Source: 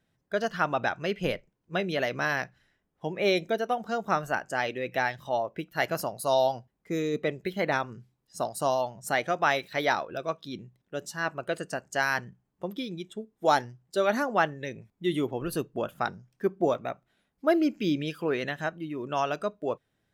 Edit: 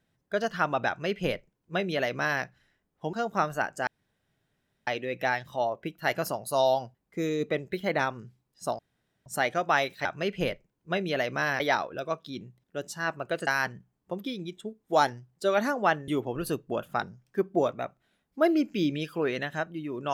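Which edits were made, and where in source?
0:00.88–0:02.43: duplicate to 0:09.78
0:03.13–0:03.86: remove
0:04.60: splice in room tone 1.00 s
0:08.52–0:08.99: fill with room tone
0:11.65–0:11.99: remove
0:14.60–0:15.14: remove

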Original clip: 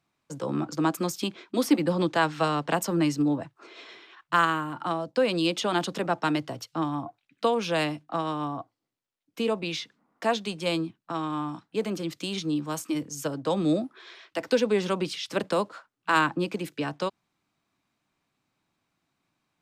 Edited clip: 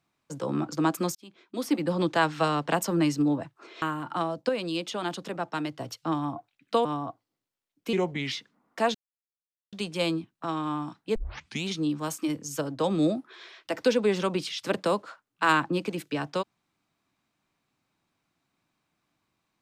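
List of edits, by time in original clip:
0:01.15–0:02.10: fade in linear
0:03.82–0:04.52: remove
0:05.19–0:06.50: clip gain −5.5 dB
0:07.55–0:08.36: remove
0:09.44–0:09.76: play speed 83%
0:10.39: splice in silence 0.78 s
0:11.82: tape start 0.52 s

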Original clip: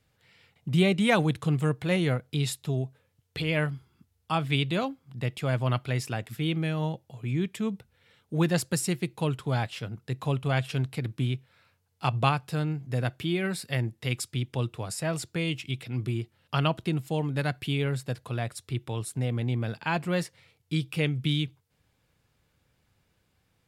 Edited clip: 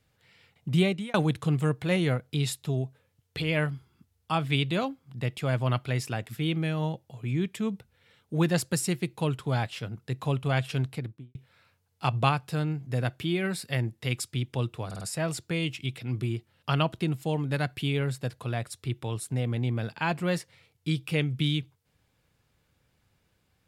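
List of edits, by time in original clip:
0:00.78–0:01.14: fade out linear
0:10.84–0:11.35: fade out and dull
0:14.86: stutter 0.05 s, 4 plays

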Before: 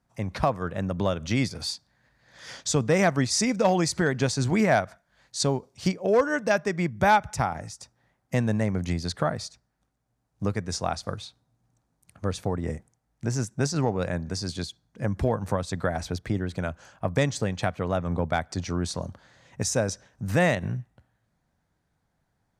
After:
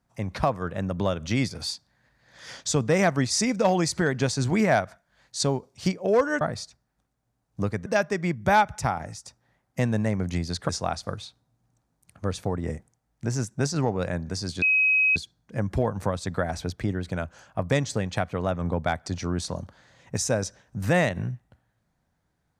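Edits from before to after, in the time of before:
0:09.24–0:10.69: move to 0:06.41
0:14.62: insert tone 2,540 Hz −17.5 dBFS 0.54 s

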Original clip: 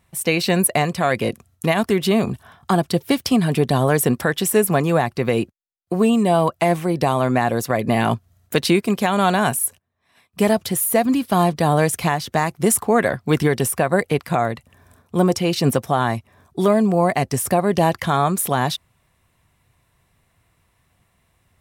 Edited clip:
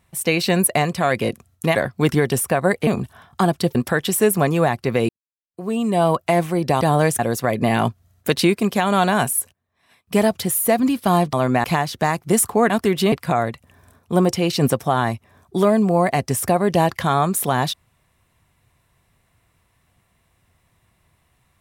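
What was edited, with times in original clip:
0:01.75–0:02.17: swap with 0:13.03–0:14.15
0:03.05–0:04.08: remove
0:05.42–0:06.37: fade in quadratic
0:07.14–0:07.45: swap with 0:11.59–0:11.97

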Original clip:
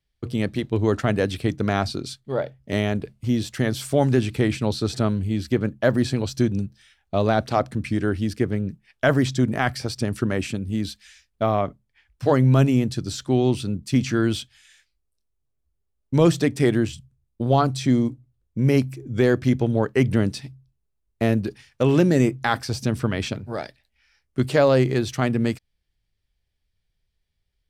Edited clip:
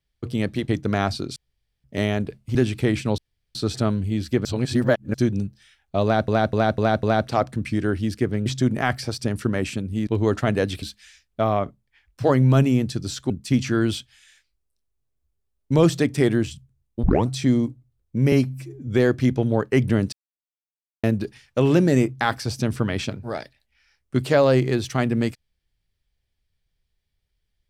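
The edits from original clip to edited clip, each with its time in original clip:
0:00.68–0:01.43: move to 0:10.84
0:02.11–0:02.59: fill with room tone
0:03.30–0:04.11: remove
0:04.74: splice in room tone 0.37 s
0:05.64–0:06.33: reverse
0:07.22–0:07.47: repeat, 5 plays
0:08.65–0:09.23: remove
0:13.32–0:13.72: remove
0:17.45: tape start 0.25 s
0:18.74–0:19.11: time-stretch 1.5×
0:20.36–0:21.27: silence

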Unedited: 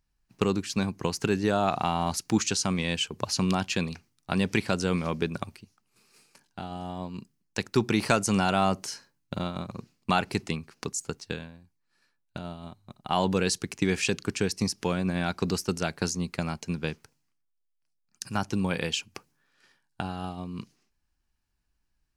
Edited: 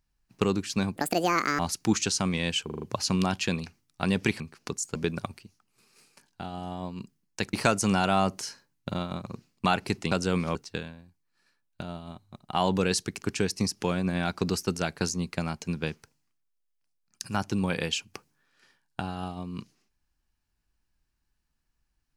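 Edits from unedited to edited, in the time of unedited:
0:00.96–0:02.04: play speed 171%
0:03.10: stutter 0.04 s, 5 plays
0:04.69–0:05.13: swap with 0:10.56–0:11.11
0:07.71–0:07.98: remove
0:13.78–0:14.23: remove

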